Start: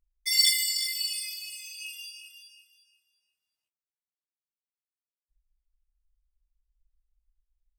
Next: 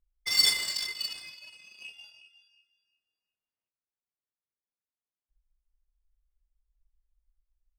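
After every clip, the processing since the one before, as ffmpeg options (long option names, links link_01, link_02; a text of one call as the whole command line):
ffmpeg -i in.wav -af "adynamicsmooth=sensitivity=4.5:basefreq=1900" out.wav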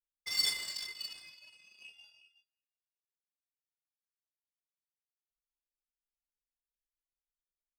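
ffmpeg -i in.wav -af "agate=range=-24dB:threshold=-60dB:ratio=16:detection=peak,volume=-8dB" out.wav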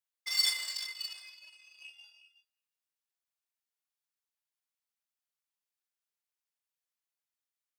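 ffmpeg -i in.wav -af "highpass=740,volume=2.5dB" out.wav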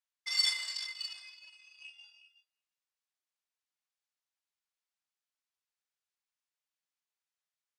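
ffmpeg -i in.wav -af "highpass=620,lowpass=7600" out.wav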